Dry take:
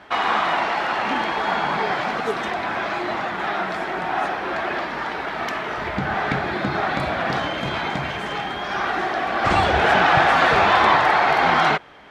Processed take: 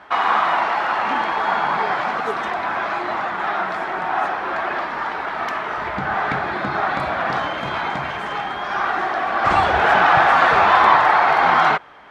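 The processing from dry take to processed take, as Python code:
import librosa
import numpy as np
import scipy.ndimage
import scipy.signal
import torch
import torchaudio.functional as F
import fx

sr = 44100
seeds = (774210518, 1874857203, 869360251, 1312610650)

y = fx.peak_eq(x, sr, hz=1100.0, db=8.5, octaves=1.6)
y = y * 10.0 ** (-4.0 / 20.0)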